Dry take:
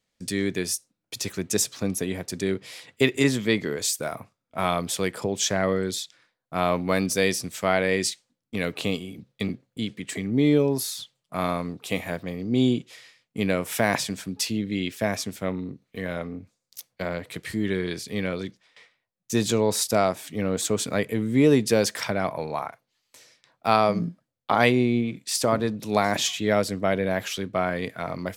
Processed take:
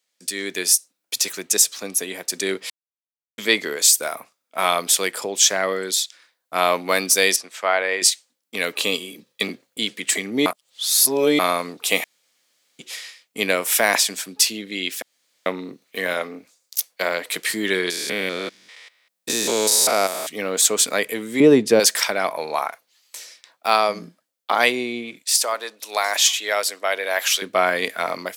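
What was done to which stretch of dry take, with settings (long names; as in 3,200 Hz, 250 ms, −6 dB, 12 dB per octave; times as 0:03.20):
0:02.70–0:03.38: silence
0:07.36–0:08.02: resonant band-pass 1,000 Hz, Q 0.64
0:08.76–0:09.43: notch comb filter 720 Hz
0:10.46–0:11.39: reverse
0:12.04–0:12.79: fill with room tone
0:15.02–0:15.46: fill with room tone
0:16.13–0:17.30: high-pass filter 200 Hz 6 dB per octave
0:17.90–0:20.29: spectrum averaged block by block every 200 ms
0:21.40–0:21.80: spectral tilt −4 dB per octave
0:25.23–0:27.42: high-pass filter 600 Hz
whole clip: high-pass filter 300 Hz 12 dB per octave; spectral tilt +2.5 dB per octave; automatic gain control gain up to 10.5 dB; level −1 dB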